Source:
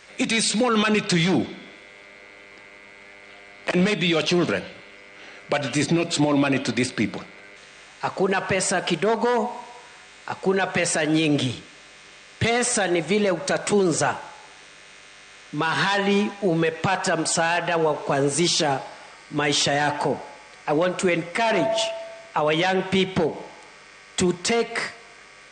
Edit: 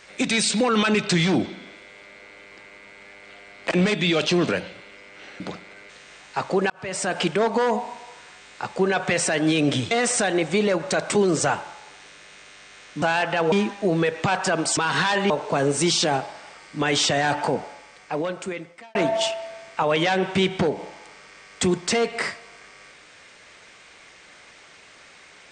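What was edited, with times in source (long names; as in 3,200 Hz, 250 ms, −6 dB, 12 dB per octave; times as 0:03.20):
0:05.40–0:07.07: remove
0:08.37–0:08.86: fade in
0:11.58–0:12.48: remove
0:15.59–0:16.12: swap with 0:17.37–0:17.87
0:20.17–0:21.52: fade out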